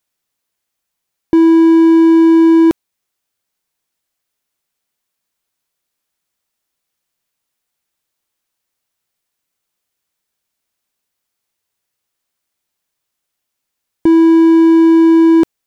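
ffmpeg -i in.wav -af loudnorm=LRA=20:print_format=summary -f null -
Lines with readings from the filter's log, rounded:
Input Integrated:     -8.9 LUFS
Input True Peak:      -2.4 dBTP
Input LRA:             1.9 LU
Input Threshold:     -19.0 LUFS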